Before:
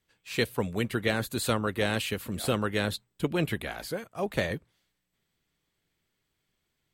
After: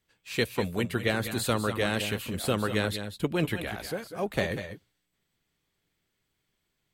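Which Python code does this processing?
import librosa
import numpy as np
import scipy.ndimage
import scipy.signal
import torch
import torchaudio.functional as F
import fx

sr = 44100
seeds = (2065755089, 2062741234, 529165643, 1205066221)

y = fx.echo_multitap(x, sr, ms=(193, 203), db=(-12.0, -12.5))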